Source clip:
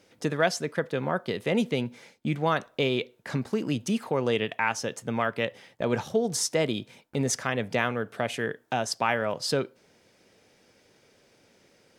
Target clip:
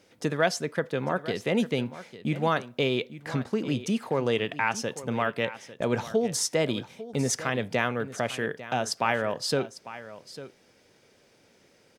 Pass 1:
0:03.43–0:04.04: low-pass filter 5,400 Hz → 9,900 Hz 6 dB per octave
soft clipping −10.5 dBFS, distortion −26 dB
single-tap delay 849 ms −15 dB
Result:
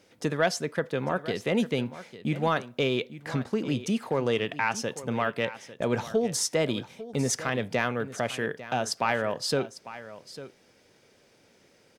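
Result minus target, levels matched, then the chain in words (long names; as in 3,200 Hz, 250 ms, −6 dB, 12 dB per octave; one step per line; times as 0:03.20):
soft clipping: distortion +16 dB
0:03.43–0:04.04: low-pass filter 5,400 Hz → 9,900 Hz 6 dB per octave
soft clipping −1.5 dBFS, distortion −42 dB
single-tap delay 849 ms −15 dB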